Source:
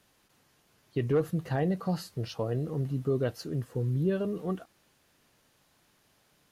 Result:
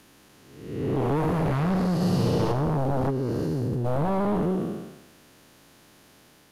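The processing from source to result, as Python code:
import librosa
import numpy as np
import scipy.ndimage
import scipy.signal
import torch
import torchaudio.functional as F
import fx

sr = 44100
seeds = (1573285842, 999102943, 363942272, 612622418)

y = fx.spec_blur(x, sr, span_ms=450.0)
y = fx.peak_eq(y, sr, hz=290.0, db=5.5, octaves=1.1)
y = fx.level_steps(y, sr, step_db=19, at=(3.09, 3.84), fade=0.02)
y = fx.fold_sine(y, sr, drive_db=9, ceiling_db=-21.0)
y = fx.room_flutter(y, sr, wall_m=11.4, rt60_s=1.2, at=(1.94, 2.52))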